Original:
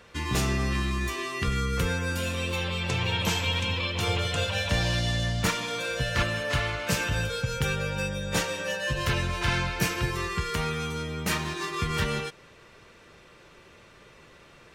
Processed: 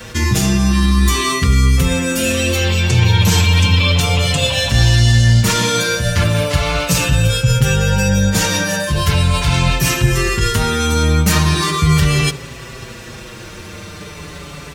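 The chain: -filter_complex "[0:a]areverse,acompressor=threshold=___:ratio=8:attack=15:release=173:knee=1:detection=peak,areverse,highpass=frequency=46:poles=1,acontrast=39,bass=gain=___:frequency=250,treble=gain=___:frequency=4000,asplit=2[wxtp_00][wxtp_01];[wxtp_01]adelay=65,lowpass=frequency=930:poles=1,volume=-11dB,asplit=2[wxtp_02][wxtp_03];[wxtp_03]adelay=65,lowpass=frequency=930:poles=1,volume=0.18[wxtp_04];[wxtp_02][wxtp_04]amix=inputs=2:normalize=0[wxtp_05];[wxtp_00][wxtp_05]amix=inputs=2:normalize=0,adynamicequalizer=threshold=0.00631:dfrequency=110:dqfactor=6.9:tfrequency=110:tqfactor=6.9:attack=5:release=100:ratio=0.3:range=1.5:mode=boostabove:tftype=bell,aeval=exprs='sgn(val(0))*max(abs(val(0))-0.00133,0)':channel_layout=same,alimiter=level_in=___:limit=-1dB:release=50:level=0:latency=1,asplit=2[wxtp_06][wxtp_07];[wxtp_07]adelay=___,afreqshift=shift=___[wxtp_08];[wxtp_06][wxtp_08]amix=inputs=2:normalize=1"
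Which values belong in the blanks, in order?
-35dB, 9, 8, 16.5dB, 5.8, -0.38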